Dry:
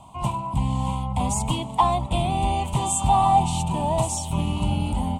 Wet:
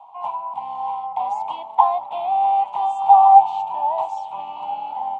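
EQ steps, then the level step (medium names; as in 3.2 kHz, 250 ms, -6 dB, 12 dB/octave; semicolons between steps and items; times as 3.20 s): resonant high-pass 810 Hz, resonance Q 6.8; distance through air 190 m; treble shelf 6.3 kHz -9 dB; -6.0 dB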